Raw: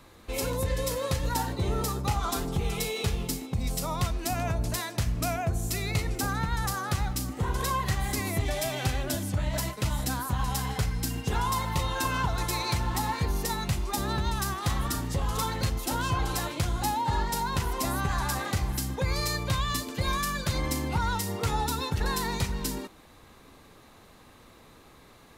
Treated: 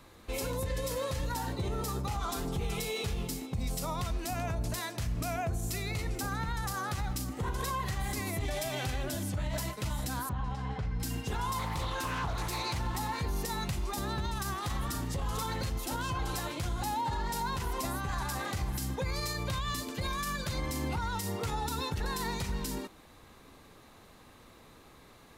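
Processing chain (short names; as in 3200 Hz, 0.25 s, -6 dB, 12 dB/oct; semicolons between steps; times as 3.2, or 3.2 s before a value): limiter -23 dBFS, peak gain reduction 8.5 dB; 10.29–11 tape spacing loss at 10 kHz 27 dB; 11.59–12.8 Doppler distortion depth 0.37 ms; gain -2 dB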